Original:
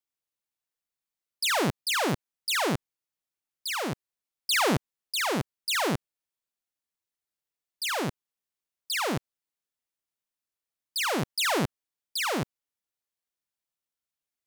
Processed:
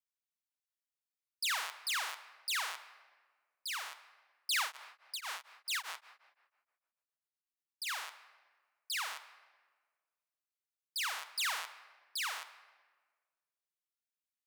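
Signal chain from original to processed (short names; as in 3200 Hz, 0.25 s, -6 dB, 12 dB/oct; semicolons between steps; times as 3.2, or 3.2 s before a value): HPF 1000 Hz 24 dB/oct; shoebox room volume 1600 m³, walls mixed, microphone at 0.59 m; 4.62–7.85 beating tremolo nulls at 3.7 Hz -> 9.8 Hz; gain -7.5 dB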